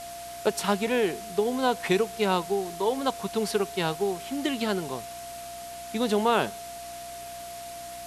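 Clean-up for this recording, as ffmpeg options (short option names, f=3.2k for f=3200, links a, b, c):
-af "bandreject=f=62.1:t=h:w=4,bandreject=f=124.2:t=h:w=4,bandreject=f=186.3:t=h:w=4,bandreject=f=248.4:t=h:w=4,bandreject=f=310.5:t=h:w=4,bandreject=f=690:w=30,afftdn=nr=30:nf=-40"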